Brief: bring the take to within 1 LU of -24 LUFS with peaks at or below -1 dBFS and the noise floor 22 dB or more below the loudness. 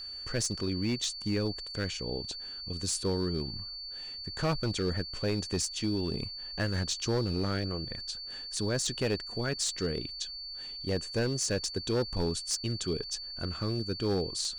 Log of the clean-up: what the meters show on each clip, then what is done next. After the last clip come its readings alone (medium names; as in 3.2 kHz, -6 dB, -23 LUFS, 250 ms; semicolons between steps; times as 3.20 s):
clipped samples 1.5%; clipping level -23.5 dBFS; steady tone 4.5 kHz; tone level -39 dBFS; loudness -32.5 LUFS; peak level -23.5 dBFS; loudness target -24.0 LUFS
-> clip repair -23.5 dBFS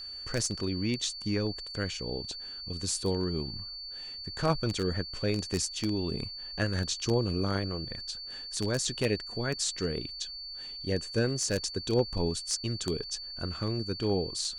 clipped samples 0.0%; steady tone 4.5 kHz; tone level -39 dBFS
-> band-stop 4.5 kHz, Q 30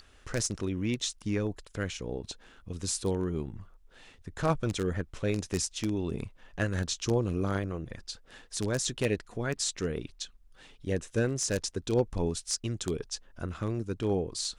steady tone not found; loudness -32.5 LUFS; peak level -14.0 dBFS; loudness target -24.0 LUFS
-> trim +8.5 dB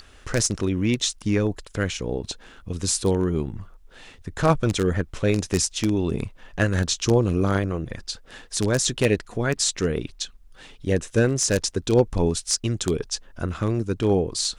loudness -24.0 LUFS; peak level -5.5 dBFS; noise floor -50 dBFS